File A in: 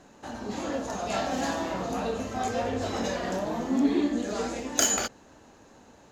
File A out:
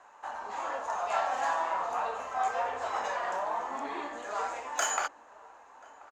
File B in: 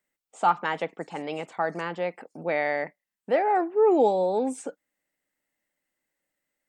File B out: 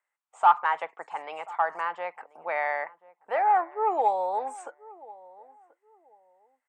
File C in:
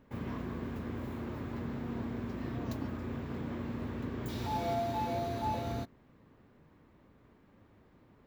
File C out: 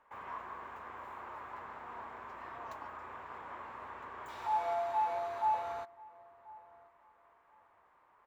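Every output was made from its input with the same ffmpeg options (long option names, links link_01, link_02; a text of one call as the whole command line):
ffmpeg -i in.wav -filter_complex "[0:a]equalizer=frequency=125:width_type=o:width=1:gain=-5,equalizer=frequency=250:width_type=o:width=1:gain=-8,equalizer=frequency=500:width_type=o:width=1:gain=-4,equalizer=frequency=1000:width_type=o:width=1:gain=10,equalizer=frequency=4000:width_type=o:width=1:gain=-4,equalizer=frequency=8000:width_type=o:width=1:gain=11,acontrast=28,acrossover=split=450 3200:gain=0.112 1 0.158[link_01][link_02][link_03];[link_01][link_02][link_03]amix=inputs=3:normalize=0,asplit=2[link_04][link_05];[link_05]adelay=1034,lowpass=frequency=830:poles=1,volume=-19dB,asplit=2[link_06][link_07];[link_07]adelay=1034,lowpass=frequency=830:poles=1,volume=0.28[link_08];[link_06][link_08]amix=inputs=2:normalize=0[link_09];[link_04][link_09]amix=inputs=2:normalize=0,volume=-6.5dB" out.wav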